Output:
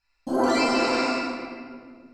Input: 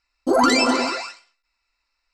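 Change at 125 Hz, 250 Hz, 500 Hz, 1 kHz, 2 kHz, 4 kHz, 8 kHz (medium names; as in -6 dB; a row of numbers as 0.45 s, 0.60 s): +1.5 dB, -3.0 dB, -2.5 dB, -4.0 dB, -3.5 dB, -5.5 dB, -8.0 dB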